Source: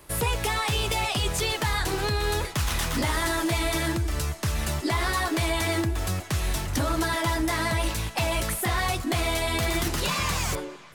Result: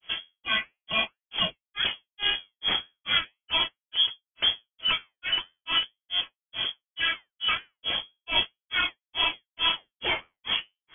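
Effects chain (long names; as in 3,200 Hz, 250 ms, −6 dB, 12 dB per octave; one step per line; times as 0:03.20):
granular cloud 218 ms, grains 2.3 per second, spray 16 ms, pitch spread up and down by 0 semitones
flanger 1.9 Hz, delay 5.3 ms, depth 7.5 ms, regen −70%
voice inversion scrambler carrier 3,300 Hz
level +7.5 dB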